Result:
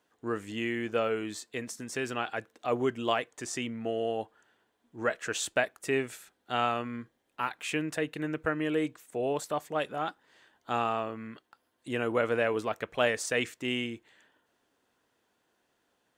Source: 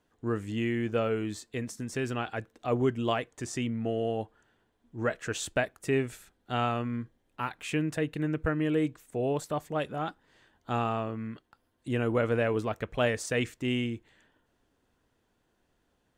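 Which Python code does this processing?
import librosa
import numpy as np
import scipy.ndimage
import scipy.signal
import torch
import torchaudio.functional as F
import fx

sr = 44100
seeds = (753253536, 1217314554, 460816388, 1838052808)

y = fx.highpass(x, sr, hz=470.0, slope=6)
y = y * librosa.db_to_amplitude(2.5)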